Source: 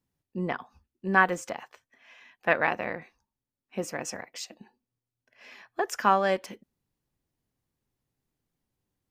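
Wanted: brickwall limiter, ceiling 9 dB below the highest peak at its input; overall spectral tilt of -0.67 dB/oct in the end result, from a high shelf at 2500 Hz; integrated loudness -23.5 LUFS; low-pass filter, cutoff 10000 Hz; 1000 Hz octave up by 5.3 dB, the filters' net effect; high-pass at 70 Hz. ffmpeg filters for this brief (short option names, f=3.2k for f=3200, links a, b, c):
-af "highpass=70,lowpass=10k,equalizer=f=1k:t=o:g=8,highshelf=f=2.5k:g=-8,volume=6dB,alimiter=limit=-6dB:level=0:latency=1"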